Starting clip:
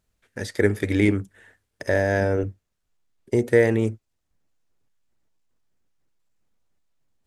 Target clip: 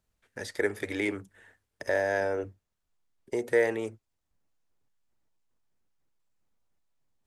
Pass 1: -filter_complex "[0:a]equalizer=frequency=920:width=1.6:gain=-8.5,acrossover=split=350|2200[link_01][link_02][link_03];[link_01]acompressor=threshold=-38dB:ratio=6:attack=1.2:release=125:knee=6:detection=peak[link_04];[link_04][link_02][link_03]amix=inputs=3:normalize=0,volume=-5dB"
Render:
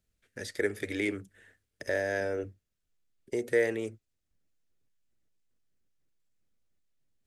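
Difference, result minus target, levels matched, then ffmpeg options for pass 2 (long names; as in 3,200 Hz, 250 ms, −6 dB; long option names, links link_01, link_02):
1,000 Hz band −5.0 dB
-filter_complex "[0:a]equalizer=frequency=920:width=1.6:gain=3,acrossover=split=350|2200[link_01][link_02][link_03];[link_01]acompressor=threshold=-38dB:ratio=6:attack=1.2:release=125:knee=6:detection=peak[link_04];[link_04][link_02][link_03]amix=inputs=3:normalize=0,volume=-5dB"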